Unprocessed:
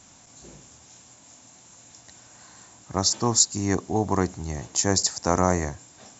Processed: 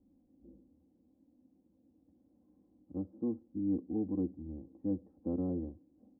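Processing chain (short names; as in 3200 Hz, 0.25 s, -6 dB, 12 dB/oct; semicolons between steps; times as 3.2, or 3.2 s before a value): ladder low-pass 410 Hz, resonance 45%; comb 3.8 ms, depth 95%; gain -6 dB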